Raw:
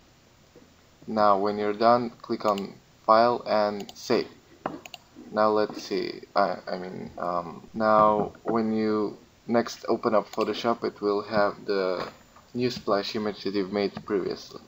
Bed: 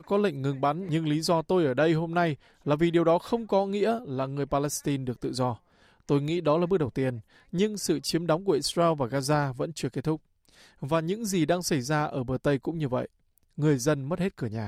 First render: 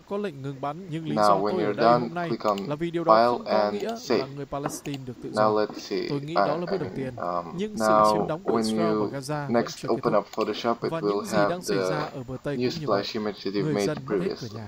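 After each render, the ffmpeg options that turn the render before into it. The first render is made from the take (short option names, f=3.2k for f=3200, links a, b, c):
-filter_complex "[1:a]volume=-5dB[a];[0:a][a]amix=inputs=2:normalize=0"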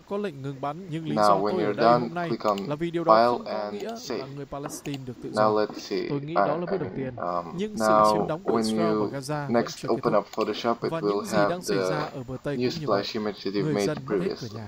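-filter_complex "[0:a]asettb=1/sr,asplit=3[a][b][c];[a]atrim=end=3.394[d];[b]atrim=start=3.39:end=4.84,asetpts=PTS-STARTPTS,afade=t=in:d=0.004:c=qsin,afade=t=out:st=1.446:d=0.004:c=qsin,acompressor=threshold=-31dB:ratio=2:attack=3.2:release=140:knee=1:detection=peak[e];[c]atrim=start=4.836[f];[d][e]acrossfade=d=0.004:c1=hsin:c2=qsin[g];[g][f]acrossfade=d=0.004:c1=qsin:c2=hsin,asettb=1/sr,asplit=3[h][i][j];[h]atrim=end=6.024[k];[i]atrim=start=6.02:end=7.27,asetpts=PTS-STARTPTS,afade=t=in:d=0.004:c=qsin,afade=t=out:st=1.246:d=0.004:c=qsin,lowpass=3.1k[l];[j]atrim=start=7.266[m];[k][l]acrossfade=d=0.004:c1=hsin:c2=qsin[n];[n][m]acrossfade=d=0.004:c1=qsin:c2=hsin"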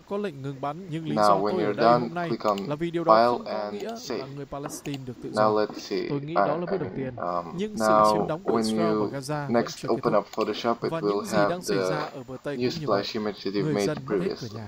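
-filter_complex "[0:a]asettb=1/sr,asplit=3[a][b][c];[a]atrim=end=11.974[d];[b]atrim=start=11.97:end=12.62,asetpts=PTS-STARTPTS,afade=t=in:d=0.004:c=qsin,afade=t=out:st=0.646:d=0.004:c=qsin,lowshelf=f=170:g=-10[e];[c]atrim=start=12.616[f];[d][e]acrossfade=d=0.004:c1=hsin:c2=qsin[g];[g][f]acrossfade=d=0.004:c1=qsin:c2=hsin"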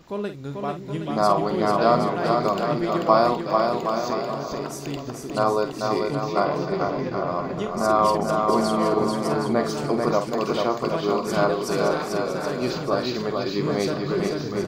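-filter_complex "[0:a]asplit=2[a][b];[b]adelay=49,volume=-9.5dB[c];[a][c]amix=inputs=2:normalize=0,aecho=1:1:440|770|1018|1203|1342:0.631|0.398|0.251|0.158|0.1"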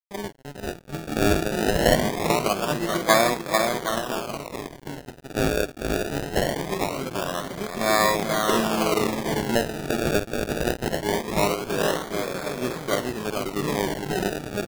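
-af "acrusher=samples=29:mix=1:aa=0.000001:lfo=1:lforange=29:lforate=0.22,aeval=exprs='sgn(val(0))*max(abs(val(0))-0.0211,0)':c=same"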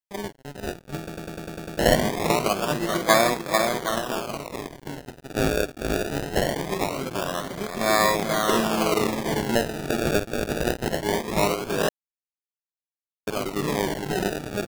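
-filter_complex "[0:a]asplit=11[a][b][c][d][e][f][g][h][i][j][k];[a]atrim=end=1.092[l];[b]atrim=start=0.988:end=1.092[m];[c]atrim=start=0.988:end=1.092[n];[d]atrim=start=0.988:end=1.092[o];[e]atrim=start=0.988:end=1.092[p];[f]atrim=start=0.988:end=1.092[q];[g]atrim=start=0.988:end=1.092[r];[h]atrim=start=0.988:end=1.092[s];[i]atrim=start=1.788:end=11.89,asetpts=PTS-STARTPTS,afade=t=out:st=10.098:d=0.004:c=hsin[t];[j]atrim=start=11.89:end=13.27,asetpts=PTS-STARTPTS,volume=0[u];[k]atrim=start=13.27,asetpts=PTS-STARTPTS,afade=t=in:d=0.004:c=hsin[v];[l][m]acrossfade=d=0.004:c1=hsin:c2=hsin[w];[w][n]acrossfade=d=0.004:c1=hsin:c2=hsin[x];[x][o]acrossfade=d=0.004:c1=hsin:c2=hsin[y];[y][p]acrossfade=d=0.004:c1=hsin:c2=hsin[z];[z][q]acrossfade=d=0.004:c1=hsin:c2=hsin[aa];[aa][r]acrossfade=d=0.004:c1=hsin:c2=hsin[ab];[ab][s]acrossfade=d=0.004:c1=hsin:c2=hsin[ac];[t][u][v]concat=n=3:v=0:a=1[ad];[ac][ad]acrossfade=d=0.004:c1=hsin:c2=hsin"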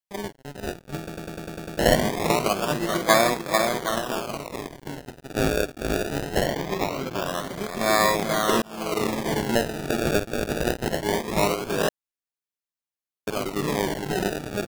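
-filter_complex "[0:a]asettb=1/sr,asplit=3[a][b][c];[a]atrim=end=6.464[d];[b]atrim=start=6.46:end=7.26,asetpts=PTS-STARTPTS,afade=t=in:d=0.004:c=qsin,afade=t=out:st=0.796:d=0.004:c=qsin,equalizer=f=9.5k:t=o:w=0.41:g=-12.5[e];[c]atrim=start=7.256[f];[d][e]acrossfade=d=0.004:c1=hsin:c2=qsin[g];[g][f]acrossfade=d=0.004:c1=qsin:c2=hsin,asplit=2[h][i];[h]atrim=end=8.62,asetpts=PTS-STARTPTS,afade=t=out:st=8.616:d=0.004:c=hsin[j];[i]atrim=start=8.62,asetpts=PTS-STARTPTS,afade=t=in:d=0.5[k];[j][k]concat=n=2:v=0:a=1"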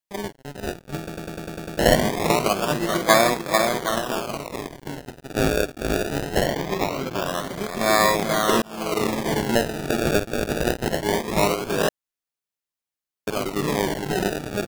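-af "volume=2dB"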